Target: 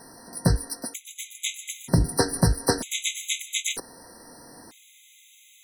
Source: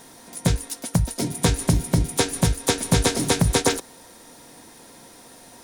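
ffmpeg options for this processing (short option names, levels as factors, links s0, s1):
-af "afftfilt=real='re*gt(sin(2*PI*0.53*pts/sr)*(1-2*mod(floor(b*sr/1024/2000),2)),0)':imag='im*gt(sin(2*PI*0.53*pts/sr)*(1-2*mod(floor(b*sr/1024/2000),2)),0)':win_size=1024:overlap=0.75"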